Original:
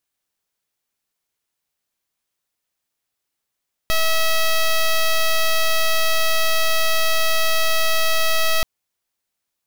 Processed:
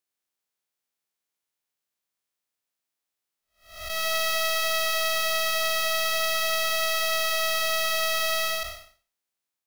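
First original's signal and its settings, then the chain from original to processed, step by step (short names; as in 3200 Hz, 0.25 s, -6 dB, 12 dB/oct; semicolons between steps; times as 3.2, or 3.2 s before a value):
pulse 646 Hz, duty 8% -16.5 dBFS 4.73 s
time blur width 0.317 s; low shelf 95 Hz -11 dB; flange 0.42 Hz, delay 7.7 ms, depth 6.2 ms, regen -65%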